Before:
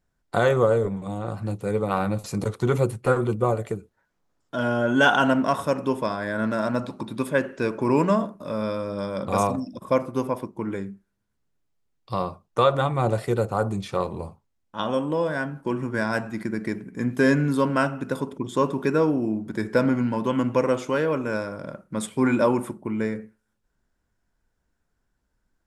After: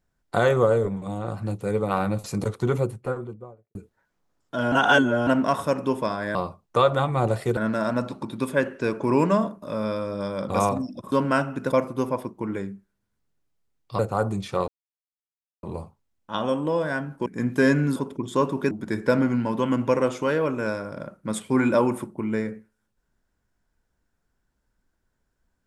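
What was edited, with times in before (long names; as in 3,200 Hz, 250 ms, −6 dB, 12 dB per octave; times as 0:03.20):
0:02.37–0:03.75: fade out and dull
0:04.72–0:05.27: reverse
0:12.17–0:13.39: move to 0:06.35
0:14.08: splice in silence 0.95 s
0:15.71–0:16.87: remove
0:17.57–0:18.17: move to 0:09.90
0:18.92–0:19.38: remove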